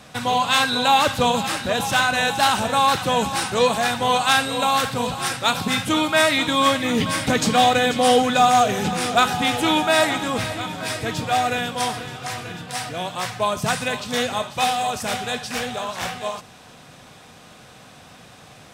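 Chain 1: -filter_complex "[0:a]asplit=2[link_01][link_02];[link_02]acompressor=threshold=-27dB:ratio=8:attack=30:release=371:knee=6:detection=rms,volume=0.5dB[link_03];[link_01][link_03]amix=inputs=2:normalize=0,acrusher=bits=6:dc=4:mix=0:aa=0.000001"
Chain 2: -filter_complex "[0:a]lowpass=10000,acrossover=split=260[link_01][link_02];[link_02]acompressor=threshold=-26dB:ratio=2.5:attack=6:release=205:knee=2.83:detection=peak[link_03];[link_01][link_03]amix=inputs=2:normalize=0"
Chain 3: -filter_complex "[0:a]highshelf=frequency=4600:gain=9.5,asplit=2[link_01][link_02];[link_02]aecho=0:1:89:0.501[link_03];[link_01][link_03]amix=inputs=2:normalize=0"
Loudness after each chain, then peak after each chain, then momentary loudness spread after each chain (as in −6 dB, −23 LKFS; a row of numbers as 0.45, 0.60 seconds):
−18.0, −26.0, −17.5 LKFS; −4.5, −11.5, −1.0 dBFS; 8, 21, 10 LU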